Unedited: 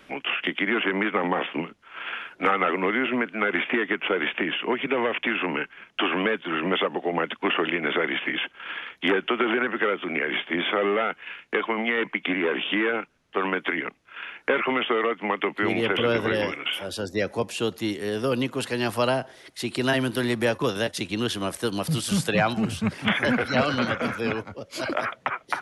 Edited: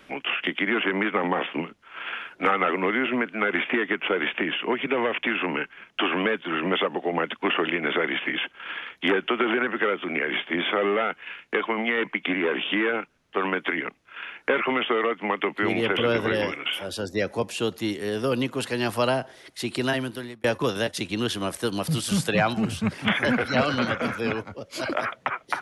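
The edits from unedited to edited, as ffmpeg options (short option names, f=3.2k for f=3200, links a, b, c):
-filter_complex "[0:a]asplit=2[a][b];[a]atrim=end=20.44,asetpts=PTS-STARTPTS,afade=t=out:st=19.76:d=0.68[c];[b]atrim=start=20.44,asetpts=PTS-STARTPTS,afade=t=in:d=0.004:c=hsin[d];[c][d]concat=n=2:v=0:a=1"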